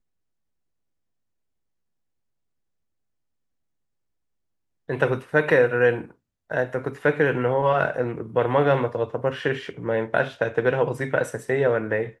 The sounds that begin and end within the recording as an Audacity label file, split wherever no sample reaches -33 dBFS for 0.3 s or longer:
4.890000	6.050000	sound